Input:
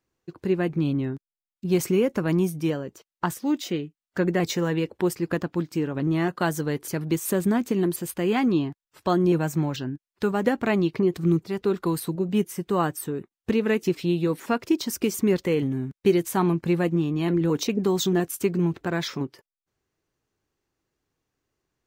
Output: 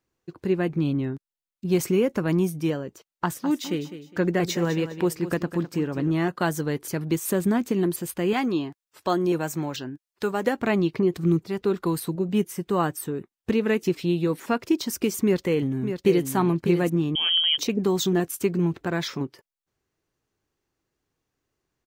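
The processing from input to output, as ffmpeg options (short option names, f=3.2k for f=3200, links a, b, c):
-filter_complex "[0:a]asplit=3[a][b][c];[a]afade=t=out:st=3.33:d=0.02[d];[b]aecho=1:1:205|410|615:0.251|0.0703|0.0197,afade=t=in:st=3.33:d=0.02,afade=t=out:st=6.1:d=0.02[e];[c]afade=t=in:st=6.1:d=0.02[f];[d][e][f]amix=inputs=3:normalize=0,asettb=1/sr,asplit=3[g][h][i];[g]atrim=end=8.334[j];[h]atrim=start=8.33:end=10.6,asetpts=PTS-STARTPTS,afade=t=in:d=0.004:c=qsin,afade=t=out:st=2.266:d=0.004:c=qsin,bass=f=250:g=-8,treble=f=4k:g=3[k];[i]atrim=start=10.596[l];[j][k]acrossfade=d=0.004:c1=hsin:c2=qsin[m];[m][l]acrossfade=d=0.004:c1=qsin:c2=hsin,asplit=2[n][o];[o]afade=t=in:st=15.21:d=0.01,afade=t=out:st=16.29:d=0.01,aecho=0:1:600|1200|1800:0.398107|0.0796214|0.0159243[p];[n][p]amix=inputs=2:normalize=0,asettb=1/sr,asplit=3[q][r][s];[q]atrim=end=17.154[t];[r]atrim=start=17.15:end=17.58,asetpts=PTS-STARTPTS,afade=t=in:d=0.004:c=qsin,afade=t=out:st=0.426:d=0.004:c=qsin,lowpass=f=2.9k:t=q:w=0.5098,lowpass=f=2.9k:t=q:w=0.6013,lowpass=f=2.9k:t=q:w=0.9,lowpass=f=2.9k:t=q:w=2.563,afreqshift=-3400[u];[s]atrim=start=17.576[v];[t][u]acrossfade=d=0.004:c1=hsin:c2=qsin[w];[w][v]acrossfade=d=0.004:c1=qsin:c2=hsin"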